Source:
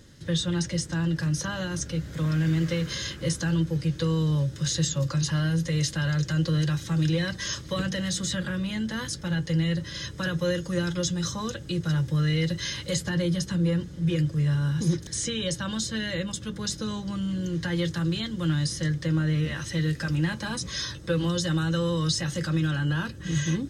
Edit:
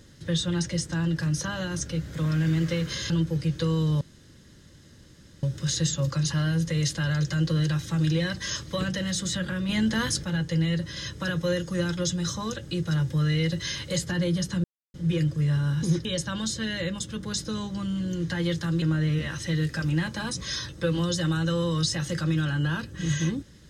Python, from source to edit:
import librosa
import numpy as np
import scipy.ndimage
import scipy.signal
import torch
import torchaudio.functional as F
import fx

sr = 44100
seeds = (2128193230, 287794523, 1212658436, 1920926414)

y = fx.edit(x, sr, fx.cut(start_s=3.1, length_s=0.4),
    fx.insert_room_tone(at_s=4.41, length_s=1.42),
    fx.clip_gain(start_s=8.67, length_s=0.55, db=5.5),
    fx.silence(start_s=13.62, length_s=0.3),
    fx.cut(start_s=15.03, length_s=0.35),
    fx.cut(start_s=18.15, length_s=0.93), tone=tone)